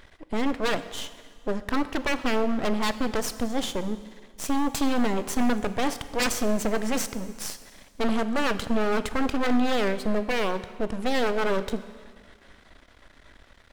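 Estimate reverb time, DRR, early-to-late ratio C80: 1.7 s, 12.0 dB, 14.5 dB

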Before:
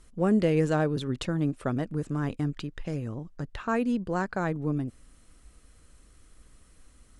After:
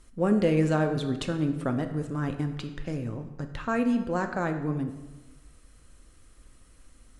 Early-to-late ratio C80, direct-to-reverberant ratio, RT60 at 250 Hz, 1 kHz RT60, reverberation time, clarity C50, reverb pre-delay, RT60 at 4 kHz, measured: 11.5 dB, 6.0 dB, 1.2 s, 1.1 s, 1.1 s, 9.5 dB, 3 ms, 0.85 s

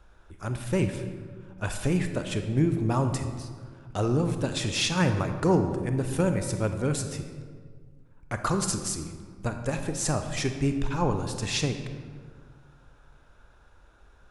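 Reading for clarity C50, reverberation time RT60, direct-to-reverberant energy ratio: 7.5 dB, 1.8 s, 6.5 dB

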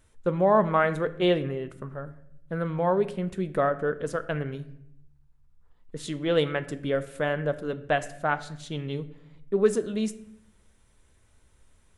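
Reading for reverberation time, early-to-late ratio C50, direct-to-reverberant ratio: 0.75 s, 15.5 dB, 10.5 dB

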